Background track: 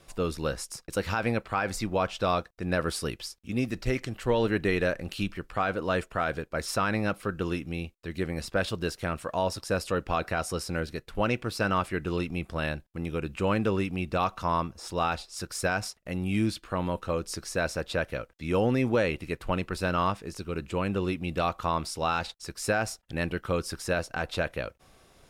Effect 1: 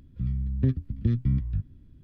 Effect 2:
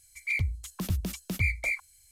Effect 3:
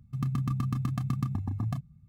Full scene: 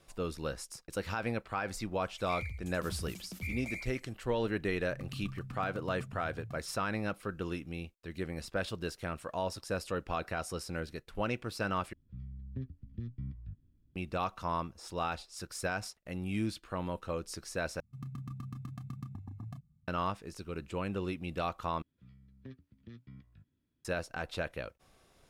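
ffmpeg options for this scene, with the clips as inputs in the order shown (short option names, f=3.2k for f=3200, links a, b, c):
-filter_complex "[3:a]asplit=2[a][b];[1:a]asplit=2[c][d];[0:a]volume=-7dB[e];[2:a]aecho=1:1:83|166|249|332:0.631|0.17|0.046|0.0124[f];[d]highpass=f=880:p=1[g];[e]asplit=4[h][i][j][k];[h]atrim=end=11.934[l];[c]atrim=end=2.03,asetpts=PTS-STARTPTS,volume=-16.5dB[m];[i]atrim=start=13.956:end=17.804[n];[b]atrim=end=2.08,asetpts=PTS-STARTPTS,volume=-13dB[o];[j]atrim=start=19.876:end=21.824[p];[g]atrim=end=2.03,asetpts=PTS-STARTPTS,volume=-11dB[q];[k]atrim=start=23.846[r];[f]atrim=end=2.11,asetpts=PTS-STARTPTS,volume=-13dB,afade=t=in:d=0.004:c=hsin,afade=t=out:st=2.106:d=0.004:c=hsin,adelay=2020[s];[a]atrim=end=2.08,asetpts=PTS-STARTPTS,volume=-14.5dB,afade=t=in:d=0.004:c=hsin,afade=t=out:st=2.076:d=0.004:c=hsin,adelay=4780[t];[l][m]acrossfade=d=0.004:c1=hsin:c2=hsin[u];[u][n]acrossfade=d=0.004:c1=hsin:c2=hsin[v];[v][o]acrossfade=d=0.004:c1=hsin:c2=hsin[w];[w][p]acrossfade=d=0.004:c1=hsin:c2=hsin[x];[x][q]acrossfade=d=0.004:c1=hsin:c2=hsin[y];[y][r]acrossfade=d=0.004:c1=hsin:c2=hsin[z];[z][s][t]amix=inputs=3:normalize=0"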